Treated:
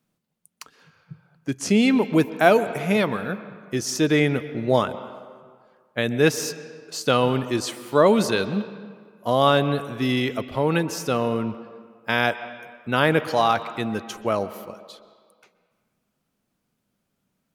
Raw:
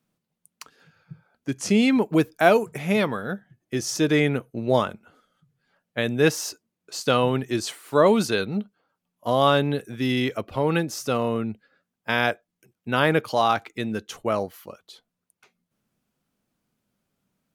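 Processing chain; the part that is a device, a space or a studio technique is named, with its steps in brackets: filtered reverb send (on a send: HPF 150 Hz 24 dB/oct + LPF 4600 Hz 12 dB/oct + reverb RT60 1.8 s, pre-delay 0.116 s, DRR 13 dB); on the sum: gain +1 dB

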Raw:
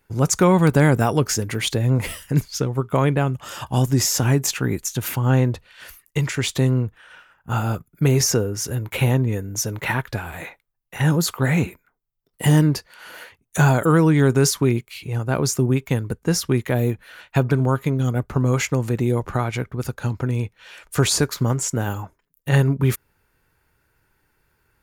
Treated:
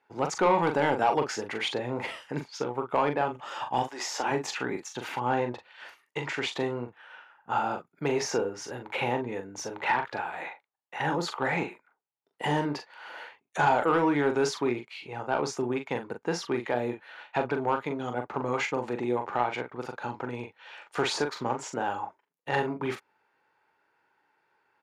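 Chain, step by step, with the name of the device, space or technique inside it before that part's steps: 3.82–4.3 HPF 980 Hz -> 240 Hz 12 dB/oct; intercom (BPF 360–3500 Hz; bell 850 Hz +9 dB 0.38 oct; soft clip -11 dBFS, distortion -16 dB; doubler 41 ms -7 dB); gain -4 dB

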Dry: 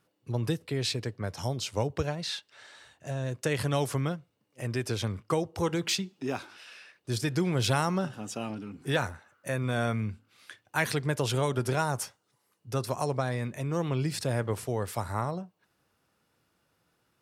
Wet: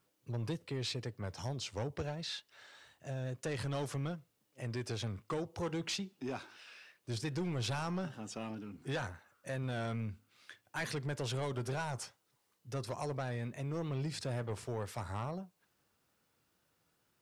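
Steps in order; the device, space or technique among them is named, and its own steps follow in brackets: compact cassette (soft clip -25.5 dBFS, distortion -11 dB; LPF 8100 Hz 12 dB/oct; wow and flutter; white noise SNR 41 dB); gain -5.5 dB

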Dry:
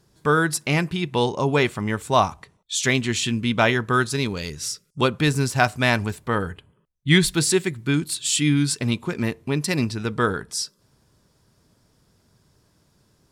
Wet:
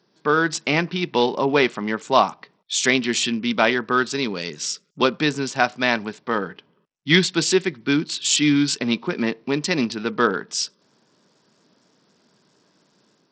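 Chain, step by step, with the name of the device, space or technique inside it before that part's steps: Bluetooth headset (HPF 190 Hz 24 dB/oct; AGC gain up to 4 dB; downsampling 16000 Hz; SBC 64 kbps 44100 Hz)

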